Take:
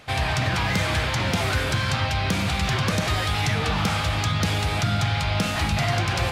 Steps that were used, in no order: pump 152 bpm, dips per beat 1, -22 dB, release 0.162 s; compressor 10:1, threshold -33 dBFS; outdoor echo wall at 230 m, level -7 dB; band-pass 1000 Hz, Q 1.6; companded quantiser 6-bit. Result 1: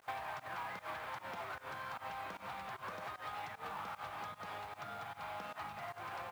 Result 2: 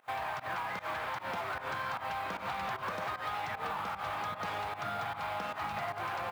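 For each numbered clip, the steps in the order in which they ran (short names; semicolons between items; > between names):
outdoor echo > pump > compressor > band-pass > companded quantiser; band-pass > companded quantiser > pump > compressor > outdoor echo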